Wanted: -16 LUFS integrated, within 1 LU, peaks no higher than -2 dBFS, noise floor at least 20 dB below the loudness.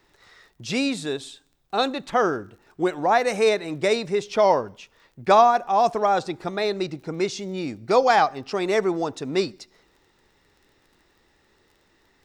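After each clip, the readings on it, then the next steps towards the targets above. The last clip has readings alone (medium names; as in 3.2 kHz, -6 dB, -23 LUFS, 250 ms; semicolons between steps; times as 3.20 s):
tick rate 21 per s; loudness -23.0 LUFS; peak level -5.0 dBFS; loudness target -16.0 LUFS
-> de-click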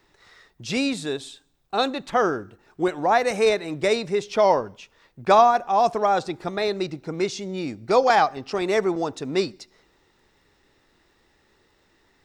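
tick rate 0.25 per s; loudness -23.0 LUFS; peak level -5.0 dBFS; loudness target -16.0 LUFS
-> trim +7 dB; peak limiter -2 dBFS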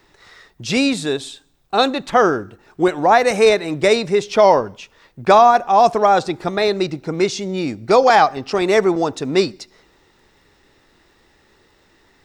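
loudness -16.5 LUFS; peak level -2.0 dBFS; noise floor -57 dBFS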